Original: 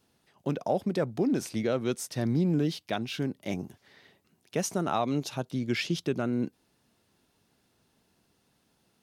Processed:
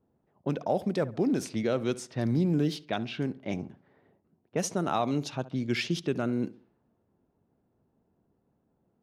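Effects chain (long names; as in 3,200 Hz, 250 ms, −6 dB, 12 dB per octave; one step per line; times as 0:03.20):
low-pass that shuts in the quiet parts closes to 710 Hz, open at −24.5 dBFS
feedback echo with a low-pass in the loop 68 ms, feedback 38%, low-pass 2,200 Hz, level −17 dB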